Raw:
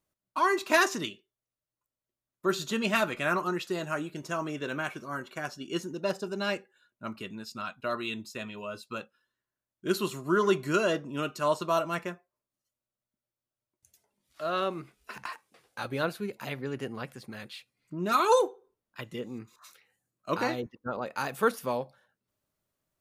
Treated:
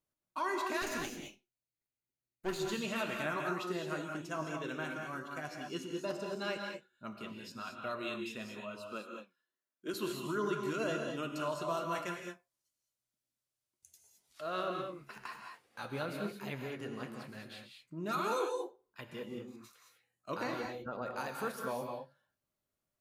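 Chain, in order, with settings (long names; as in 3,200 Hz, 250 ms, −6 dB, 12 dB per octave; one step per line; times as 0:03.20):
0:00.82–0:02.59: lower of the sound and its delayed copy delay 0.45 ms
0:08.79–0:09.94: high-pass filter 210 Hz 24 dB per octave
0:11.95–0:14.41: parametric band 7,300 Hz +10 dB 3 octaves
brickwall limiter −20 dBFS, peak gain reduction 10.5 dB
flanger 0.91 Hz, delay 6.2 ms, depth 8.4 ms, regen +69%
reverb whose tail is shaped and stops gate 240 ms rising, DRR 2.5 dB
level −3 dB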